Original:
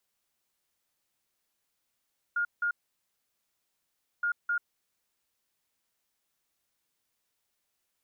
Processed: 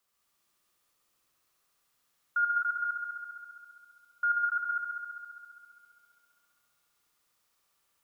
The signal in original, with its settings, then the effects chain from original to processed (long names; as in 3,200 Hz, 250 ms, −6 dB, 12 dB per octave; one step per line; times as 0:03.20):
beeps in groups sine 1,420 Hz, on 0.09 s, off 0.17 s, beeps 2, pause 1.52 s, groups 2, −25.5 dBFS
parametric band 1,200 Hz +11 dB 0.22 octaves
on a send: echo machine with several playback heads 67 ms, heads all three, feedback 67%, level −6 dB